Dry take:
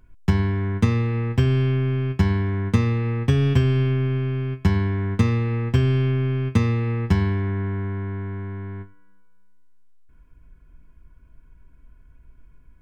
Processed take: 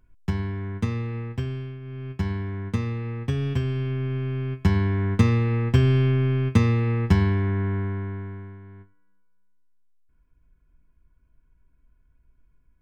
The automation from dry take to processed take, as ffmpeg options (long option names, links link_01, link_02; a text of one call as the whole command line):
ffmpeg -i in.wav -af "volume=11dB,afade=type=out:start_time=1.16:duration=0.64:silence=0.298538,afade=type=in:start_time=1.8:duration=0.46:silence=0.298538,afade=type=in:start_time=3.81:duration=1.24:silence=0.421697,afade=type=out:start_time=7.76:duration=0.84:silence=0.251189" out.wav